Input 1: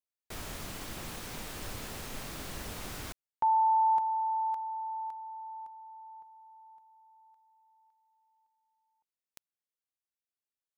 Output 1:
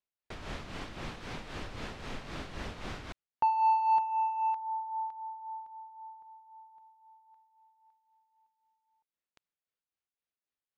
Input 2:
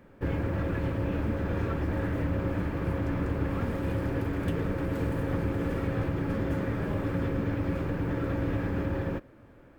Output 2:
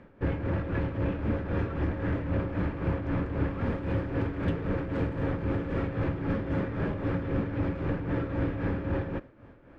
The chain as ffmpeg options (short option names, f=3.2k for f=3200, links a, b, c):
-filter_complex "[0:a]asplit=2[a][b];[b]volume=31.5dB,asoftclip=hard,volume=-31.5dB,volume=-5.5dB[c];[a][c]amix=inputs=2:normalize=0,tremolo=f=3.8:d=0.59,lowpass=3.7k"